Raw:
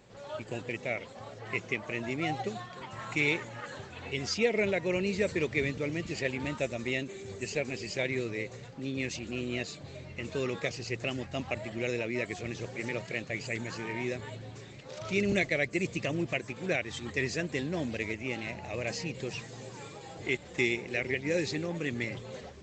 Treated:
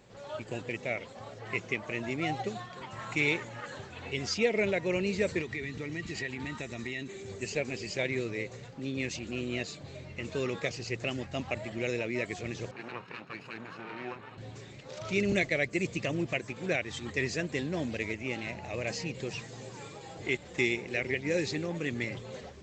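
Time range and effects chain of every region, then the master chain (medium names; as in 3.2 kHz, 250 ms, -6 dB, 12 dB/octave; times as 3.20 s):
5.41–7.14 s: peaking EQ 560 Hz -12 dB 0.29 oct + compression 5:1, threshold -33 dBFS + small resonant body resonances 1.9/3.9 kHz, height 11 dB
12.71–14.38 s: comb filter that takes the minimum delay 0.75 ms + band-pass 120–2300 Hz + bass shelf 210 Hz -10 dB
whole clip: none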